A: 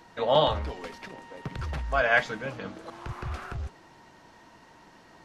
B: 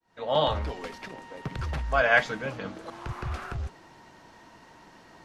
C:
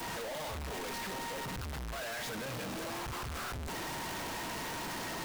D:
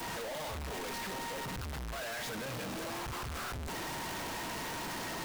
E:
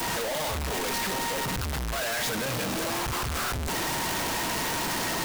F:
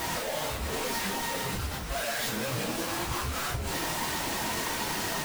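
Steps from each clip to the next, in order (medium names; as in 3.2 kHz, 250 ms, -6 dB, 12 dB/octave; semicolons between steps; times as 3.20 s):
fade-in on the opening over 0.61 s; trim +1.5 dB
one-bit comparator; trim -8.5 dB
no audible change
treble shelf 4.4 kHz +4.5 dB; trim +9 dB
phase randomisation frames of 100 ms; trim -2.5 dB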